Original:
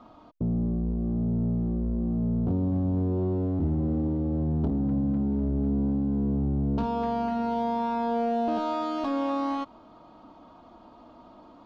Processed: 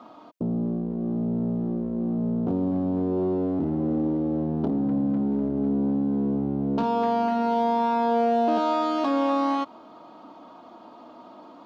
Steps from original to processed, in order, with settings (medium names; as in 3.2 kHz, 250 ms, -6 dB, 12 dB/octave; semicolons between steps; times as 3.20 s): high-pass 230 Hz 12 dB/octave; trim +5.5 dB